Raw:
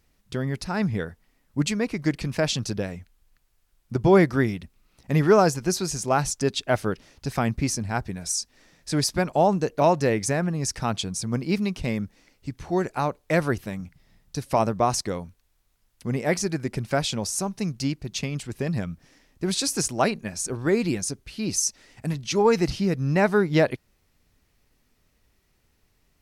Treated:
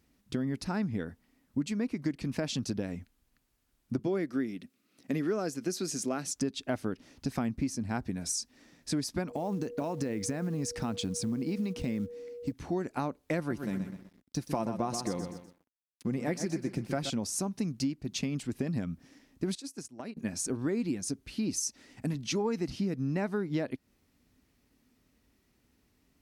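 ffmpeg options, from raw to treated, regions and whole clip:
ffmpeg -i in.wav -filter_complex "[0:a]asettb=1/sr,asplit=3[link_01][link_02][link_03];[link_01]atrim=end=3.994[link_04];[link_02]atrim=start=3.99:end=6.36,asetpts=PTS-STARTPTS,afade=type=in:duration=0.004:curve=qsin,afade=type=out:start_time=2.366:duration=0.004:curve=qsin,highpass=220,equalizer=frequency=900:width_type=o:width=0.49:gain=-9.5[link_05];[link_03]atrim=start=6.356[link_06];[link_04][link_05]acrossfade=duration=0.004:curve1=hsin:curve2=qsin[link_07];[link_07][link_06]acrossfade=duration=0.004:curve1=qsin:curve2=hsin,asettb=1/sr,asplit=3[link_08][link_09][link_10];[link_08]atrim=end=9.284[link_11];[link_09]atrim=start=9.28:end=12.52,asetpts=PTS-STARTPTS,afade=type=in:duration=0.004:curve=qsin,afade=type=out:start_time=3.236:duration=0.004:curve=qsin,acompressor=threshold=-25dB:ratio=6:attack=3.2:release=140:knee=1:detection=peak,acrusher=bits=7:mode=log:mix=0:aa=0.000001,aeval=exprs='val(0)+0.0126*sin(2*PI*480*n/s)':channel_layout=same[link_12];[link_10]atrim=start=12.516[link_13];[link_11][link_12]acrossfade=duration=0.004:curve1=hsin:curve2=qsin[link_14];[link_14][link_13]acrossfade=duration=0.004:curve1=qsin:curve2=hsin,asettb=1/sr,asplit=3[link_15][link_16][link_17];[link_15]atrim=end=13.384[link_18];[link_16]atrim=start=13.38:end=17.1,asetpts=PTS-STARTPTS,afade=type=in:duration=0.004:curve=qsin,afade=type=out:start_time=3.716:duration=0.004:curve=qsin,aecho=1:1:5.8:0.38,atrim=end_sample=164052,aecho=1:1:125|250|375|500:0.316|0.126|0.0506|0.0202,atrim=end_sample=164052,aeval=exprs='sgn(val(0))*max(abs(val(0))-0.00224,0)':channel_layout=same[link_19];[link_17]atrim=start=17.096[link_20];[link_18][link_19]acrossfade=duration=0.004:curve1=hsin:curve2=qsin[link_21];[link_21][link_20]acrossfade=duration=0.004:curve1=qsin:curve2=hsin,asettb=1/sr,asplit=3[link_22][link_23][link_24];[link_22]atrim=end=19.554[link_25];[link_23]atrim=start=19.55:end=20.17,asetpts=PTS-STARTPTS,afade=type=in:duration=0.004:curve=qsin,afade=type=out:start_time=0.616:duration=0.004:curve=qsin,highpass=79,agate=range=-20dB:threshold=-26dB:ratio=16:release=100:detection=peak,acompressor=threshold=-36dB:ratio=12:attack=3.2:release=140:knee=1:detection=peak[link_26];[link_24]atrim=start=20.166[link_27];[link_25][link_26]acrossfade=duration=0.004:curve1=hsin:curve2=qsin[link_28];[link_28][link_27]acrossfade=duration=0.004:curve1=qsin:curve2=hsin,highpass=41,equalizer=frequency=260:width_type=o:width=0.7:gain=11,acompressor=threshold=-25dB:ratio=5,volume=-4dB" out.wav

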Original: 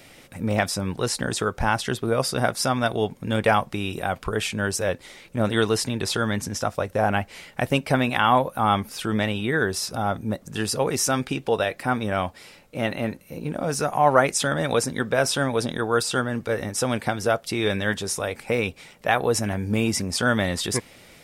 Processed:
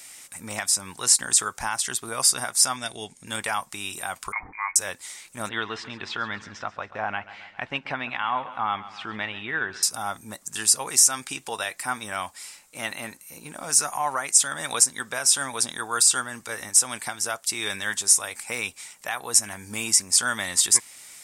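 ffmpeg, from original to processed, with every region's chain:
ffmpeg -i in.wav -filter_complex "[0:a]asettb=1/sr,asplit=3[link_01][link_02][link_03];[link_01]atrim=end=2.764[link_04];[link_02]atrim=start=2.76:end=3.27,asetpts=PTS-STARTPTS,afade=type=in:duration=0.004:curve=qsin,afade=type=out:start_time=0.506:duration=0.004:curve=qsin,lowpass=frequency=9900:width=0.5412,lowpass=frequency=9900:width=1.3066,equalizer=frequency=1100:width_type=o:width=1:gain=-11.5[link_05];[link_03]atrim=start=3.266[link_06];[link_04][link_05]acrossfade=duration=0.004:curve1=hsin:curve2=qsin[link_07];[link_07][link_06]acrossfade=duration=0.004:curve1=qsin:curve2=hsin,asettb=1/sr,asplit=3[link_08][link_09][link_10];[link_08]atrim=end=4.324[link_11];[link_09]atrim=start=4.32:end=4.76,asetpts=PTS-STARTPTS,afade=type=in:duration=0.004:curve=qsin,afade=type=out:start_time=0.436:duration=0.004:curve=qsin,highpass=420,lowpass=frequency=2200:width_type=q:width=0.5098,lowpass=frequency=2200:width_type=q:width=0.6013,lowpass=frequency=2200:width_type=q:width=0.9,lowpass=frequency=2200:width_type=q:width=2.563,afreqshift=-2600,aemphasis=mode=reproduction:type=bsi[link_12];[link_10]atrim=start=4.756[link_13];[link_11][link_12]acrossfade=duration=0.004:curve1=hsin:curve2=qsin[link_14];[link_14][link_13]acrossfade=duration=0.004:curve1=qsin:curve2=hsin,asettb=1/sr,asplit=3[link_15][link_16][link_17];[link_15]atrim=end=5.494[link_18];[link_16]atrim=start=5.49:end=9.83,asetpts=PTS-STARTPTS,afade=type=in:duration=0.004:curve=qsin,afade=type=out:start_time=4.336:duration=0.004:curve=qsin,lowpass=frequency=3200:width=0.5412,lowpass=frequency=3200:width=1.3066,aecho=1:1:135|270|405|540|675:0.15|0.0793|0.042|0.0223|0.0118,atrim=end_sample=191394[link_19];[link_17]atrim=start=9.826[link_20];[link_18][link_19]acrossfade=duration=0.004:curve1=hsin:curve2=qsin[link_21];[link_21][link_20]acrossfade=duration=0.004:curve1=qsin:curve2=hsin,equalizer=frequency=500:width_type=o:width=1:gain=-8,equalizer=frequency=1000:width_type=o:width=1:gain=7,equalizer=frequency=2000:width_type=o:width=1:gain=5,equalizer=frequency=8000:width_type=o:width=1:gain=11,alimiter=limit=-7.5dB:level=0:latency=1:release=307,bass=frequency=250:gain=-9,treble=frequency=4000:gain=12,volume=-7.5dB" out.wav

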